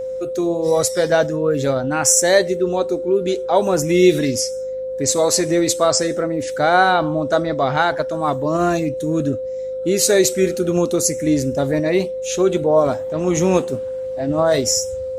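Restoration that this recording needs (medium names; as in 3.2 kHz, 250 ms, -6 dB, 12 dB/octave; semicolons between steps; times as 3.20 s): de-hum 51.4 Hz, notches 5; band-stop 520 Hz, Q 30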